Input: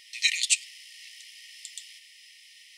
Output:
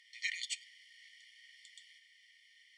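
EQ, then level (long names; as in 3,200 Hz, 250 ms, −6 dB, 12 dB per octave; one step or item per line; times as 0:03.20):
Savitzky-Golay smoothing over 41 samples
high-frequency loss of the air 70 metres
first difference
+10.5 dB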